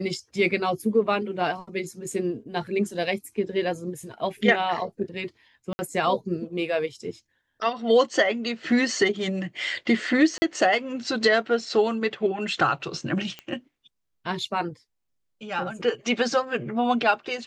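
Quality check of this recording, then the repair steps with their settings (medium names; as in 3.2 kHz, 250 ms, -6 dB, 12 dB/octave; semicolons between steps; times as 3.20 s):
5.73–5.79 s: dropout 60 ms
10.38–10.42 s: dropout 40 ms
13.39 s: pop -21 dBFS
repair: de-click; interpolate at 5.73 s, 60 ms; interpolate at 10.38 s, 40 ms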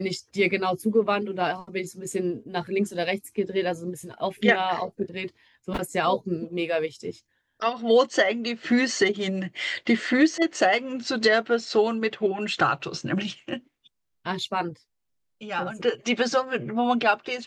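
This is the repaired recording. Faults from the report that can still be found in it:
nothing left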